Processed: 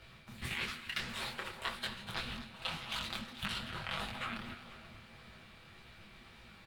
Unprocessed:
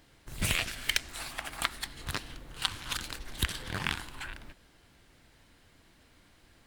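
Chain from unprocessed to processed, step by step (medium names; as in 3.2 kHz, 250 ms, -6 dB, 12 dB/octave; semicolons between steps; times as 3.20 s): high-pass 57 Hz 6 dB/octave; resonant high shelf 5.4 kHz -7 dB, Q 1.5; comb 6.5 ms, depth 54%; reverse; compression 6:1, threshold -41 dBFS, peak gain reduction 19 dB; reverse; whistle 2.6 kHz -69 dBFS; frequency shift -260 Hz; on a send: two-band feedback delay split 950 Hz, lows 442 ms, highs 242 ms, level -13 dB; on the sum: detune thickener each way 59 cents; trim +8 dB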